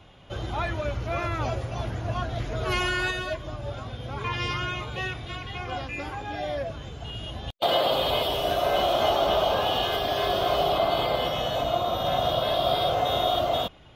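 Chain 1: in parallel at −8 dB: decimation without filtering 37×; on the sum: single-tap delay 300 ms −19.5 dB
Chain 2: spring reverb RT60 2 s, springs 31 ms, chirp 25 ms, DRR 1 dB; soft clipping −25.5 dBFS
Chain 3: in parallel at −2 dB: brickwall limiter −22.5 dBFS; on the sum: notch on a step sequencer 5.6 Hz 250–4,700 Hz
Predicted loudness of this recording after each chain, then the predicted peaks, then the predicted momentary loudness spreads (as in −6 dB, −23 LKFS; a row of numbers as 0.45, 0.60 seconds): −26.0, −29.5, −25.0 LKFS; −9.0, −25.5, −10.5 dBFS; 11, 6, 9 LU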